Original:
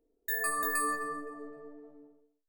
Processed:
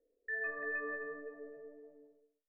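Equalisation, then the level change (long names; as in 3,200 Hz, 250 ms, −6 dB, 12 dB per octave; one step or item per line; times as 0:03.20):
formant resonators in series e
high-frequency loss of the air 170 metres
+8.0 dB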